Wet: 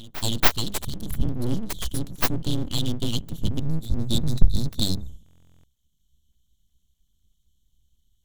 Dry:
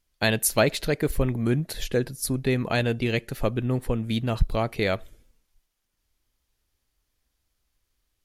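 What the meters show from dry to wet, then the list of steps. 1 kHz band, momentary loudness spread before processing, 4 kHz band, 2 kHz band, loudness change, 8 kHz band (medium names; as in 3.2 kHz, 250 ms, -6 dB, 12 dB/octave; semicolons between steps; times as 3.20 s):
-3.0 dB, 5 LU, +3.5 dB, -5.5 dB, -1.0 dB, -2.5 dB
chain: local Wiener filter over 9 samples; spectral selection erased 3.60–5.08 s, 220–3600 Hz; treble shelf 4.2 kHz +7.5 dB; hum notches 50/100/150/200 Hz; gain riding 2 s; brick-wall FIR band-stop 270–3000 Hz; frequency shift -49 Hz; pre-echo 283 ms -17 dB; full-wave rectifier; buffer glitch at 5.24 s, samples 1024, times 16; trim +4 dB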